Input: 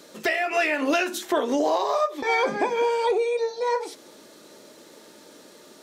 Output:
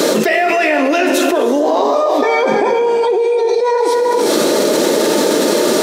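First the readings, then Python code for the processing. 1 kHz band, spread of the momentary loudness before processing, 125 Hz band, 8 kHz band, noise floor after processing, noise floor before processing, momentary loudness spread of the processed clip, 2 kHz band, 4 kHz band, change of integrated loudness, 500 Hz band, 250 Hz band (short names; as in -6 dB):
+10.0 dB, 4 LU, n/a, +18.0 dB, -15 dBFS, -50 dBFS, 1 LU, +8.5 dB, +14.0 dB, +10.5 dB, +13.0 dB, +14.5 dB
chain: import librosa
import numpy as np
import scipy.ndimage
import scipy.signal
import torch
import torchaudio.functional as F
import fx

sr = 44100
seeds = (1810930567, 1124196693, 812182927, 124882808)

y = scipy.signal.sosfilt(scipy.signal.butter(2, 140.0, 'highpass', fs=sr, output='sos'), x)
y = fx.peak_eq(y, sr, hz=430.0, db=7.0, octaves=1.8)
y = fx.rev_gated(y, sr, seeds[0], gate_ms=450, shape='flat', drr_db=6.0)
y = fx.env_flatten(y, sr, amount_pct=100)
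y = F.gain(torch.from_numpy(y), -1.5).numpy()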